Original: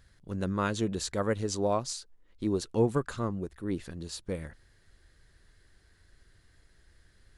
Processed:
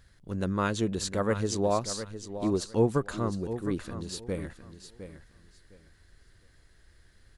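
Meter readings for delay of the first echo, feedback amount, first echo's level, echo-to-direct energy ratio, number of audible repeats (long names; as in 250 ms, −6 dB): 709 ms, 21%, −11.0 dB, −11.0 dB, 2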